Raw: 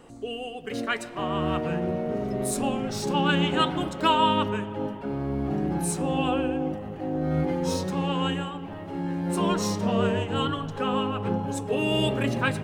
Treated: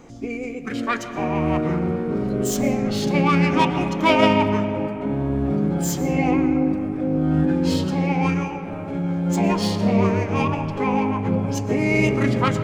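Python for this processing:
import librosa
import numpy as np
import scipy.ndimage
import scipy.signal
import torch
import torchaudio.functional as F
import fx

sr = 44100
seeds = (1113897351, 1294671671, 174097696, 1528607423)

y = fx.self_delay(x, sr, depth_ms=0.063)
y = fx.formant_shift(y, sr, semitones=-4)
y = fx.rev_freeverb(y, sr, rt60_s=3.5, hf_ratio=0.45, predelay_ms=80, drr_db=10.5)
y = y * 10.0 ** (5.0 / 20.0)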